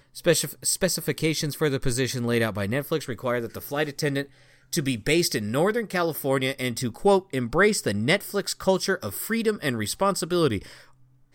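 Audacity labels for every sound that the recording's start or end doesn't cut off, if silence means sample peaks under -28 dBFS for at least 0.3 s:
4.730000	10.590000	sound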